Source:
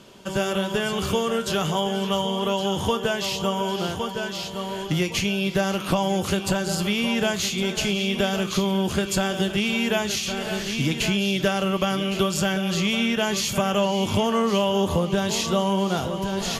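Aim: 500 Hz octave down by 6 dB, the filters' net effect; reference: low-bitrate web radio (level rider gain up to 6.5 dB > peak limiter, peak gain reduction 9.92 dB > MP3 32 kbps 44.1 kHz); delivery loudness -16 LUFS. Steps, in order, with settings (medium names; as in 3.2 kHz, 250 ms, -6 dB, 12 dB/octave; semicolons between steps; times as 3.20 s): peaking EQ 500 Hz -8 dB; level rider gain up to 6.5 dB; peak limiter -20 dBFS; trim +13 dB; MP3 32 kbps 44.1 kHz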